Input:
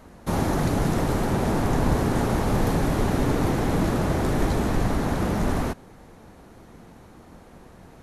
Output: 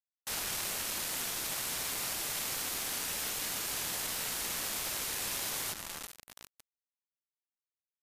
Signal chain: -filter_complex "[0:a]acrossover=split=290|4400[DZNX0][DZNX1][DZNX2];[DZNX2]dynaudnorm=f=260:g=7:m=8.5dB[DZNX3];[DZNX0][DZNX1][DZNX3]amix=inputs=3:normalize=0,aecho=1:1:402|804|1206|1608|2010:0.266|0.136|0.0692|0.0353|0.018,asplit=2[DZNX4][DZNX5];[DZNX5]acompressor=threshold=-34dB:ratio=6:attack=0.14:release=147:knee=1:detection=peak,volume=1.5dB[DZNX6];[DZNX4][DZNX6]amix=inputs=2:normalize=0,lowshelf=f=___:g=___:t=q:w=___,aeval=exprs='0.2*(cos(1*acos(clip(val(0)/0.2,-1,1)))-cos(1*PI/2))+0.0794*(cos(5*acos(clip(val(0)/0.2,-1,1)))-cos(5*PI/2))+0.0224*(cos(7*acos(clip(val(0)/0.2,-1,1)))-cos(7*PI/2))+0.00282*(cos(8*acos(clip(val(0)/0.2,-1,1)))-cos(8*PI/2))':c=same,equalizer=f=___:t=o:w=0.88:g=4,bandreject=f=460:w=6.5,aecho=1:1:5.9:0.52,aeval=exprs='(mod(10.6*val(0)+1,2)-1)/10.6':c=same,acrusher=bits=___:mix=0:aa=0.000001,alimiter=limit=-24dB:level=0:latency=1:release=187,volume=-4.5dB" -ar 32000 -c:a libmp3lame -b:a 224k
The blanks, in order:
730, -12.5, 1.5, 140, 3